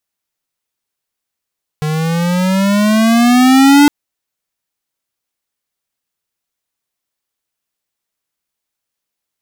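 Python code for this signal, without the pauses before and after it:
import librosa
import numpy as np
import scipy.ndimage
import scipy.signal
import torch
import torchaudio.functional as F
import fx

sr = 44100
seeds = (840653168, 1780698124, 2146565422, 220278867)

y = fx.riser_tone(sr, length_s=2.06, level_db=-5.5, wave='square', hz=151.0, rise_st=11.5, swell_db=11.0)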